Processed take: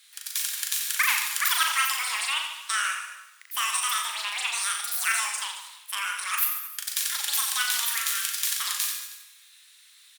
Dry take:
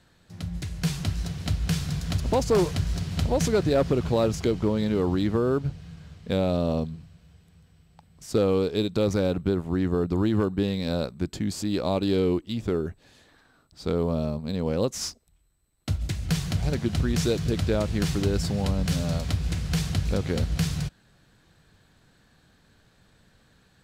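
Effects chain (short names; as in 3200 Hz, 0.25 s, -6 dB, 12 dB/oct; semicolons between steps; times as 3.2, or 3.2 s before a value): HPF 790 Hz 24 dB/oct; reverse bouncing-ball echo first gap 90 ms, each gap 1.25×, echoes 5; reverb RT60 2.2 s, pre-delay 0.146 s, DRR 9 dB; speed mistake 33 rpm record played at 78 rpm; gain +8.5 dB; Opus 64 kbps 48000 Hz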